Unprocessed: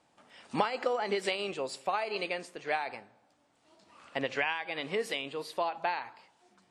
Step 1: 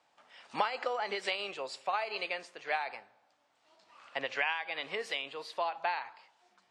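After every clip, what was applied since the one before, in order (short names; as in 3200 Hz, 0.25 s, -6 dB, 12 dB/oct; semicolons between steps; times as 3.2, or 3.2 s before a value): three-band isolator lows -13 dB, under 540 Hz, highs -16 dB, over 7200 Hz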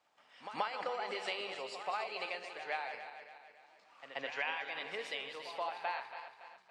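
regenerating reverse delay 0.141 s, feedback 67%, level -8.5 dB; reverse echo 0.131 s -11.5 dB; gain -5.5 dB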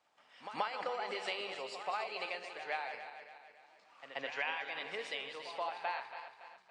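downsampling 22050 Hz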